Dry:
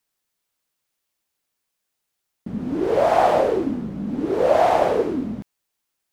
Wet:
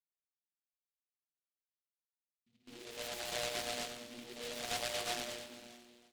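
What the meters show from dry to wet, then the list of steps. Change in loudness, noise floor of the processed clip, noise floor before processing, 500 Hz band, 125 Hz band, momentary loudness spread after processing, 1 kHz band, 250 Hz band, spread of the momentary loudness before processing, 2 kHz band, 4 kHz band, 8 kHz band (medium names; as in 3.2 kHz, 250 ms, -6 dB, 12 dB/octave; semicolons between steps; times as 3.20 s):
-19.5 dB, under -85 dBFS, -79 dBFS, -25.5 dB, -23.5 dB, 16 LU, -24.5 dB, -27.0 dB, 13 LU, -10.5 dB, -0.5 dB, no reading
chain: median filter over 41 samples; gate with hold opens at -18 dBFS; treble shelf 3 kHz +10.5 dB; hum notches 60/120/180/240/300/360 Hz; compression 6:1, threshold -26 dBFS, peak gain reduction 11.5 dB; level-controlled noise filter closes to 320 Hz, open at -26.5 dBFS; feedback comb 120 Hz, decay 1.4 s, harmonics all, mix 100%; LFO low-pass square 8.6 Hz 760–1700 Hz; feedback delay 315 ms, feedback 48%, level -18 dB; gated-style reverb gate 430 ms rising, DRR 4 dB; delay time shaken by noise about 3 kHz, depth 0.25 ms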